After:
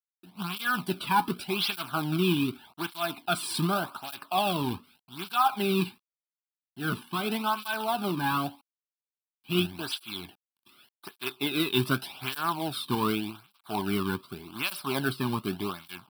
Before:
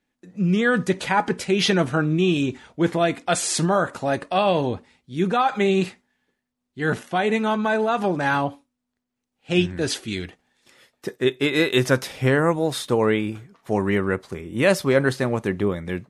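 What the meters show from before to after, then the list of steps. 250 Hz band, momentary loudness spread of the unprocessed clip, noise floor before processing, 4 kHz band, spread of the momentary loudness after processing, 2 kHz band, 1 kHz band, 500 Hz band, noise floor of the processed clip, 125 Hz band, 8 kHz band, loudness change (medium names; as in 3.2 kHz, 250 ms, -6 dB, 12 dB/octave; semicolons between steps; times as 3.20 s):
-8.0 dB, 9 LU, -81 dBFS, -3.0 dB, 11 LU, -8.0 dB, -4.5 dB, -12.5 dB, under -85 dBFS, -8.5 dB, -9.5 dB, -7.5 dB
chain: companded quantiser 4-bit; static phaser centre 1.9 kHz, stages 6; cancelling through-zero flanger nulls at 0.85 Hz, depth 1.6 ms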